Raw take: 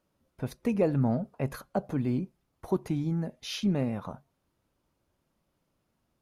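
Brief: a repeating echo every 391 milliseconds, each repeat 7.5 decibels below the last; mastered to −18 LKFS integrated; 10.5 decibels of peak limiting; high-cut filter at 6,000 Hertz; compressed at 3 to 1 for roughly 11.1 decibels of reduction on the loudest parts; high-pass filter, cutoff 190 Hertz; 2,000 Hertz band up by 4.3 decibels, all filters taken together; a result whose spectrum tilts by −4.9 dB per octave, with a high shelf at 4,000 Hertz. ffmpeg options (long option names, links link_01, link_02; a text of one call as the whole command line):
ffmpeg -i in.wav -af "highpass=190,lowpass=6000,equalizer=frequency=2000:width_type=o:gain=3.5,highshelf=frequency=4000:gain=8,acompressor=threshold=-37dB:ratio=3,alimiter=level_in=8.5dB:limit=-24dB:level=0:latency=1,volume=-8.5dB,aecho=1:1:391|782|1173|1564|1955:0.422|0.177|0.0744|0.0312|0.0131,volume=25dB" out.wav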